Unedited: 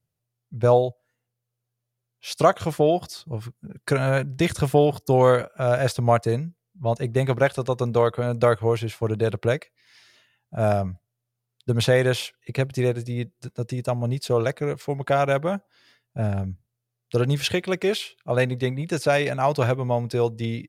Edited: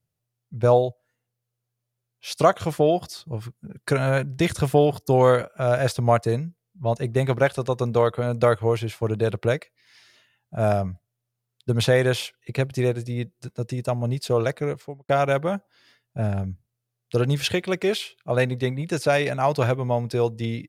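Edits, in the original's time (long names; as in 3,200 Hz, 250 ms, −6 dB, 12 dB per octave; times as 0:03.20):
0:14.64–0:15.09: fade out and dull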